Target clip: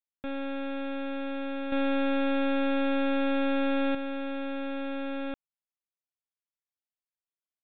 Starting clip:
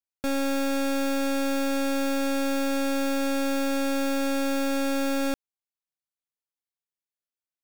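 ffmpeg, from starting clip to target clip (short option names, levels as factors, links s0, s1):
-filter_complex "[0:a]asettb=1/sr,asplit=3[s0][s1][s2];[s0]atrim=end=1.724[s3];[s1]atrim=start=1.72:end=3.95,asetpts=PTS-STARTPTS,afade=t=in:d=0.004:c=qsin,afade=t=out:st=2.226:d=0.004:c=qsin,acontrast=78[s4];[s2]atrim=start=3.946[s5];[s3][s4]acrossfade=d=0.004:c1=hsin:c2=qsin[s6];[s6][s5]acrossfade=d=0.004:c1=qsin:c2=hsin,aresample=8000,aresample=44100,volume=0.422"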